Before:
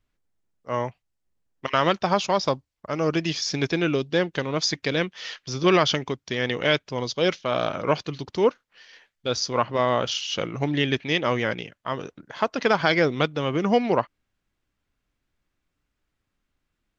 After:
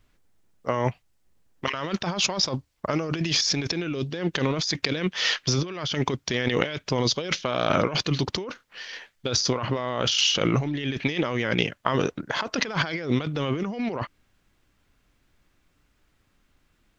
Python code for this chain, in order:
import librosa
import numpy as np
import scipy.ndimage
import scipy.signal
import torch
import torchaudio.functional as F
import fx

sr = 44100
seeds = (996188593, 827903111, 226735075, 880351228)

y = fx.dynamic_eq(x, sr, hz=730.0, q=1.0, threshold_db=-31.0, ratio=4.0, max_db=-3)
y = fx.over_compress(y, sr, threshold_db=-32.0, ratio=-1.0)
y = F.gain(torch.from_numpy(y), 5.5).numpy()